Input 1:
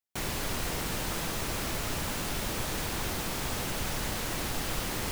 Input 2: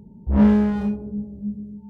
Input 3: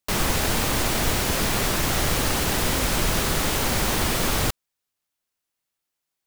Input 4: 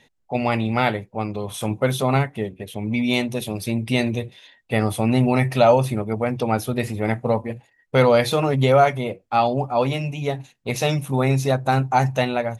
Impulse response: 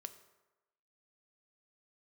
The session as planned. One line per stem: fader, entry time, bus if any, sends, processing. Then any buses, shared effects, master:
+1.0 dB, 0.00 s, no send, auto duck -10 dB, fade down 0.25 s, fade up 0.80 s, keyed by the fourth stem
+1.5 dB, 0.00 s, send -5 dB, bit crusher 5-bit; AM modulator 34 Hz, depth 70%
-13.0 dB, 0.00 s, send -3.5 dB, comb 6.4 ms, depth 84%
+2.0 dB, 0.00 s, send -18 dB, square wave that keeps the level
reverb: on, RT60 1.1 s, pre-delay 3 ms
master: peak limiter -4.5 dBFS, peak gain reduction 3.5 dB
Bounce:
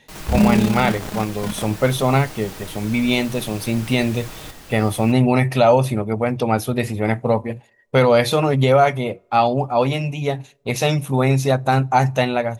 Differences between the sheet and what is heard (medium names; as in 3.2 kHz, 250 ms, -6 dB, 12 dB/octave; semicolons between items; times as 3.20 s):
stem 3 -13.0 dB -> -19.5 dB; stem 4: missing square wave that keeps the level